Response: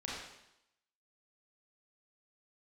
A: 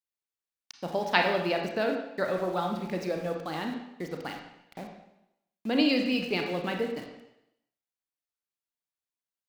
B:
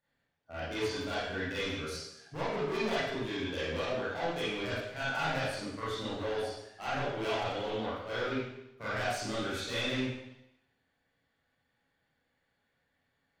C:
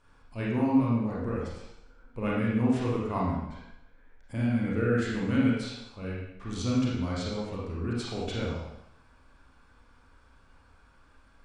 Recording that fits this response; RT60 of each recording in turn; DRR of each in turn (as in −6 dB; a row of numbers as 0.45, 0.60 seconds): C; 0.85, 0.85, 0.85 seconds; 2.5, −11.5, −5.5 decibels